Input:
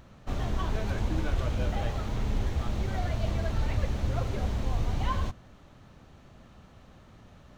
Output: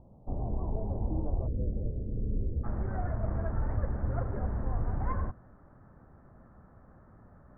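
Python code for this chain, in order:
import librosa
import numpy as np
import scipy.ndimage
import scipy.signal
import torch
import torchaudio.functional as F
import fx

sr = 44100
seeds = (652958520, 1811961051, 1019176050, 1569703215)

y = fx.tracing_dist(x, sr, depth_ms=0.4)
y = fx.steep_lowpass(y, sr, hz=fx.steps((0.0, 910.0), (1.46, 520.0), (2.63, 1700.0)), slope=48)
y = y * 10.0 ** (-2.5 / 20.0)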